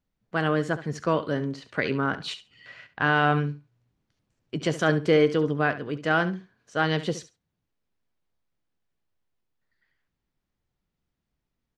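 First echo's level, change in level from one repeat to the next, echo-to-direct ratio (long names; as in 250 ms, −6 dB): −14.0 dB, −16.5 dB, −14.0 dB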